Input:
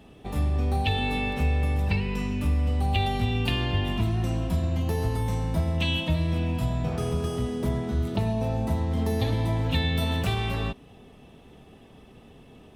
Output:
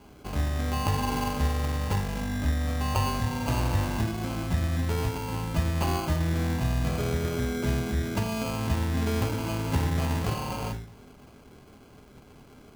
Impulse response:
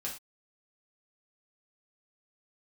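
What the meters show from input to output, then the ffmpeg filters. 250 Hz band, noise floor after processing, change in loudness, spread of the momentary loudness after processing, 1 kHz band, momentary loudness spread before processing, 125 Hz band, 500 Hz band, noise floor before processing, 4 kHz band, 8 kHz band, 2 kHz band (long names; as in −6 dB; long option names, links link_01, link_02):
−1.0 dB, −52 dBFS, −2.0 dB, 4 LU, +1.0 dB, 3 LU, −2.0 dB, −1.5 dB, −51 dBFS, −4.5 dB, +7.0 dB, −2.0 dB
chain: -filter_complex "[0:a]bandreject=frequency=55.9:width_type=h:width=4,bandreject=frequency=111.8:width_type=h:width=4,bandreject=frequency=167.7:width_type=h:width=4,bandreject=frequency=223.6:width_type=h:width=4,bandreject=frequency=279.5:width_type=h:width=4,bandreject=frequency=335.4:width_type=h:width=4,bandreject=frequency=391.3:width_type=h:width=4,bandreject=frequency=447.2:width_type=h:width=4,acrusher=samples=24:mix=1:aa=0.000001,asplit=2[link_01][link_02];[1:a]atrim=start_sample=2205[link_03];[link_02][link_03]afir=irnorm=-1:irlink=0,volume=-5.5dB[link_04];[link_01][link_04]amix=inputs=2:normalize=0,volume=-3.5dB"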